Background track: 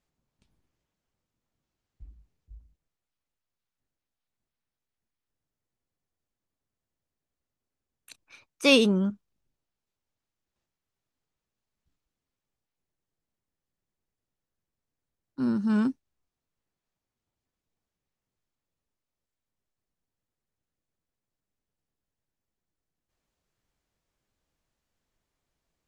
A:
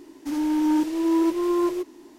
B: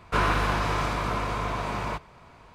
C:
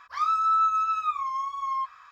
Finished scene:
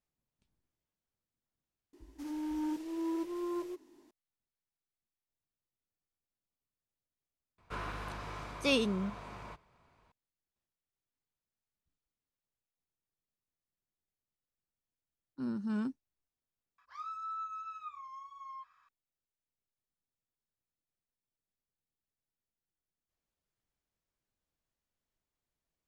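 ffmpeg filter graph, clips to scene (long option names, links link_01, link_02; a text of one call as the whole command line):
ffmpeg -i bed.wav -i cue0.wav -i cue1.wav -i cue2.wav -filter_complex "[0:a]volume=-10dB[link_01];[1:a]atrim=end=2.18,asetpts=PTS-STARTPTS,volume=-14.5dB,afade=type=in:duration=0.004:curve=hsin,afade=type=out:start_time=2.176:duration=0.004:curve=hsin,adelay=1930[link_02];[2:a]atrim=end=2.54,asetpts=PTS-STARTPTS,volume=-17dB,afade=type=in:duration=0.004:curve=hsin,afade=type=out:start_time=2.536:duration=0.004:curve=hsin,adelay=7580[link_03];[3:a]atrim=end=2.11,asetpts=PTS-STARTPTS,volume=-18dB,afade=type=in:duration=0.004:curve=hsin,afade=type=out:start_time=2.106:duration=0.004:curve=hsin,adelay=16780[link_04];[link_01][link_02][link_03][link_04]amix=inputs=4:normalize=0" out.wav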